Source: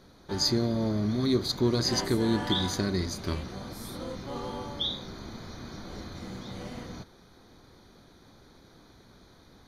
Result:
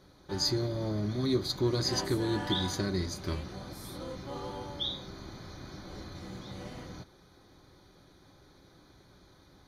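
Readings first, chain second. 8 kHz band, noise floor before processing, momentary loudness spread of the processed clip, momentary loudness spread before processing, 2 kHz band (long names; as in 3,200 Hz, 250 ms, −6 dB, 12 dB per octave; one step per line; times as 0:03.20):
−3.5 dB, −56 dBFS, 16 LU, 16 LU, −3.0 dB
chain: notch comb filter 230 Hz
level −2 dB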